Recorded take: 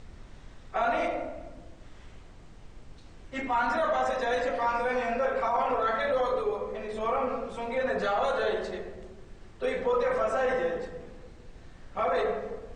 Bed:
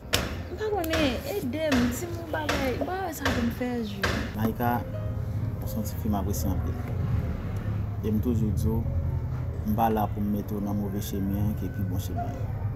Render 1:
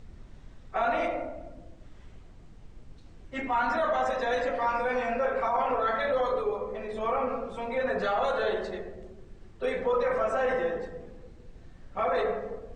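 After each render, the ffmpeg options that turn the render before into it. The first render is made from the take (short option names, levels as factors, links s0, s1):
-af "afftdn=nr=6:nf=-50"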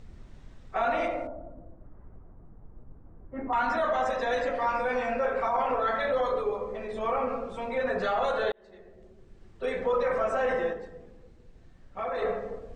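-filter_complex "[0:a]asettb=1/sr,asplit=3[s0][s1][s2];[s0]atrim=end=1.274[s3];[s1]atrim=start=1.27:end=3.53,asetpts=PTS-STARTPTS,afade=t=in:d=0.004:c=qsin,afade=t=out:st=2.256:d=0.004:c=qsin,lowpass=f=1300:w=0.5412,lowpass=f=1300:w=1.3066[s4];[s2]atrim=start=3.526[s5];[s3][s4]acrossfade=d=0.004:c1=hsin:c2=qsin[s6];[s6][s5]acrossfade=d=0.004:c1=qsin:c2=hsin,asplit=4[s7][s8][s9][s10];[s7]atrim=end=8.52,asetpts=PTS-STARTPTS,afade=t=out:st=8.516:d=0.004:c=hsin[s11];[s8]atrim=start=8.52:end=10.732,asetpts=PTS-STARTPTS,afade=t=in:d=1.32[s12];[s9]atrim=start=10.728:end=12.222,asetpts=PTS-STARTPTS,volume=0.562[s13];[s10]atrim=start=12.218[s14];[s11][s12]concat=n=2:v=0:a=1[s15];[s15][s13]acrossfade=d=0.004:c1=hsin:c2=hsin[s16];[s16][s14]acrossfade=d=0.004:c1=hsin:c2=hsin"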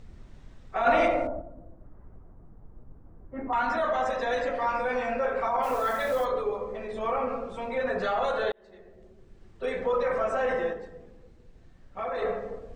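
-filter_complex "[0:a]asplit=3[s0][s1][s2];[s0]afade=t=out:st=0.85:d=0.02[s3];[s1]acontrast=59,afade=t=in:st=0.85:d=0.02,afade=t=out:st=1.4:d=0.02[s4];[s2]afade=t=in:st=1.4:d=0.02[s5];[s3][s4][s5]amix=inputs=3:normalize=0,asplit=3[s6][s7][s8];[s6]afade=t=out:st=5.62:d=0.02[s9];[s7]acrusher=bits=8:dc=4:mix=0:aa=0.000001,afade=t=in:st=5.62:d=0.02,afade=t=out:st=6.24:d=0.02[s10];[s8]afade=t=in:st=6.24:d=0.02[s11];[s9][s10][s11]amix=inputs=3:normalize=0"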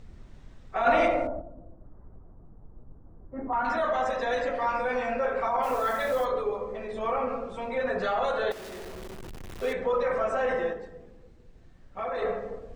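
-filter_complex "[0:a]asettb=1/sr,asplit=3[s0][s1][s2];[s0]atrim=end=1.404[s3];[s1]atrim=start=1.4:end=3.65,asetpts=PTS-STARTPTS,afade=t=in:d=0.004:c=qsin,afade=t=out:st=2.246:d=0.004:c=qsin,lowpass=1400[s4];[s2]atrim=start=3.646[s5];[s3][s4]acrossfade=d=0.004:c1=hsin:c2=qsin[s6];[s6][s5]acrossfade=d=0.004:c1=qsin:c2=hsin,asettb=1/sr,asplit=3[s7][s8][s9];[s7]atrim=end=8.514[s10];[s8]atrim=start=8.51:end=9.73,asetpts=PTS-STARTPTS,afade=t=in:d=0.004:c=qsin,afade=t=out:st=1.216:d=0.004:c=qsin,aeval=exprs='val(0)+0.5*0.0158*sgn(val(0))':c=same[s11];[s9]atrim=start=9.726[s12];[s10][s11]acrossfade=d=0.004:c1=hsin:c2=qsin[s13];[s13][s12]acrossfade=d=0.004:c1=qsin:c2=hsin"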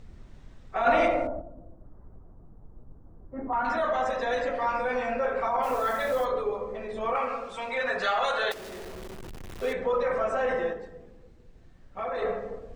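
-filter_complex "[0:a]asettb=1/sr,asplit=3[s0][s1][s2];[s0]atrim=end=7.154[s3];[s1]atrim=start=7.15:end=8.54,asetpts=PTS-STARTPTS,afade=t=in:d=0.004:c=qsin,afade=t=out:st=1.386:d=0.004:c=qsin,tiltshelf=f=730:g=-8.5[s4];[s2]atrim=start=8.536[s5];[s3][s4]acrossfade=d=0.004:c1=hsin:c2=qsin[s6];[s6][s5]acrossfade=d=0.004:c1=qsin:c2=hsin"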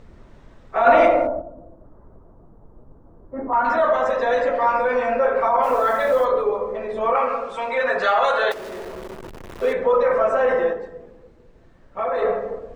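-af "equalizer=f=720:w=0.4:g=10,bandreject=f=760:w=12"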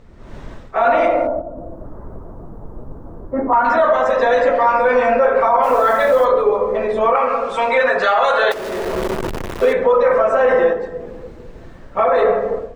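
-af "dynaudnorm=f=180:g=3:m=5.31,alimiter=limit=0.531:level=0:latency=1:release=309"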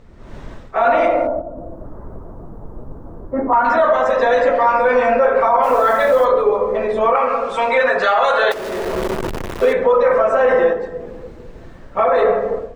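-af anull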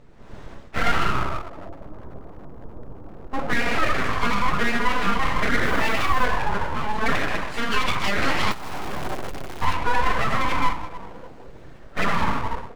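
-af "flanger=delay=6.9:depth=3.7:regen=59:speed=0.86:shape=sinusoidal,aeval=exprs='abs(val(0))':c=same"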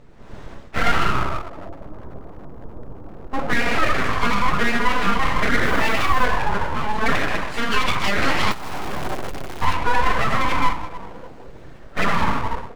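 -af "volume=1.33"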